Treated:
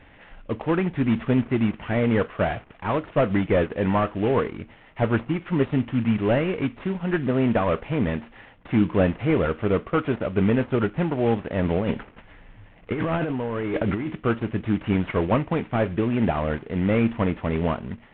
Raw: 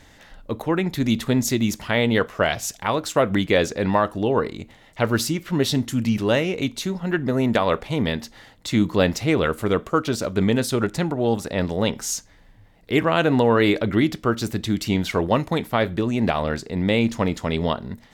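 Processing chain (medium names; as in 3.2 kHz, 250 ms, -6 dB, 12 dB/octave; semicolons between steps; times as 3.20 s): CVSD coder 16 kbps; 11.63–14.07 s: compressor with a negative ratio -25 dBFS, ratio -1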